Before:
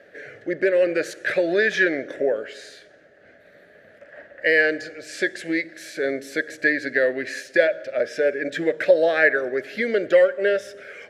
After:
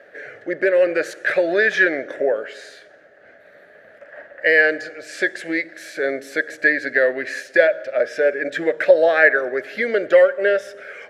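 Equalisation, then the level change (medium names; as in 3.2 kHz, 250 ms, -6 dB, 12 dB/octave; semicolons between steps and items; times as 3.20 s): peaking EQ 1 kHz +11 dB 2.6 oct; treble shelf 5.5 kHz +5 dB; -4.5 dB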